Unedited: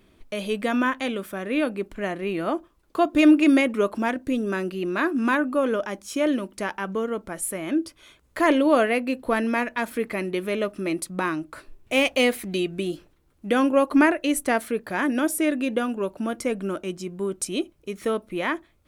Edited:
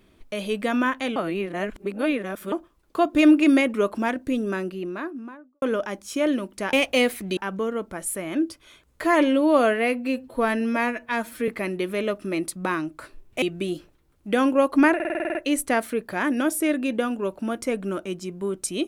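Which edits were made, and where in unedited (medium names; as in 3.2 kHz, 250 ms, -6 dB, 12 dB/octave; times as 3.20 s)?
1.16–2.52 s: reverse
4.36–5.62 s: studio fade out
8.38–10.02 s: stretch 1.5×
11.96–12.60 s: move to 6.73 s
14.13 s: stutter 0.05 s, 9 plays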